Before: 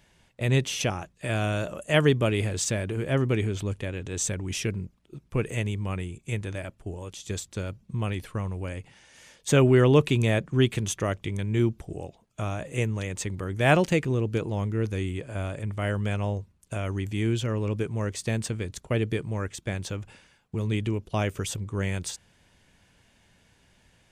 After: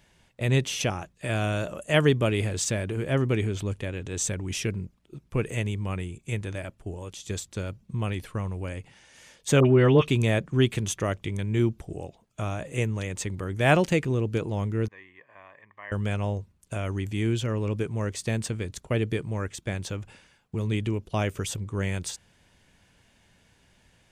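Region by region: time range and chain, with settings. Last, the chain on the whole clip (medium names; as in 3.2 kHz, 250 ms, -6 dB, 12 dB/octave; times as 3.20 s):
9.60–10.08 s: Savitzky-Golay filter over 15 samples + phase dispersion highs, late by 56 ms, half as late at 1.2 kHz
14.88–15.92 s: two resonant band-passes 1.4 kHz, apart 0.74 oct + distance through air 88 m
whole clip: none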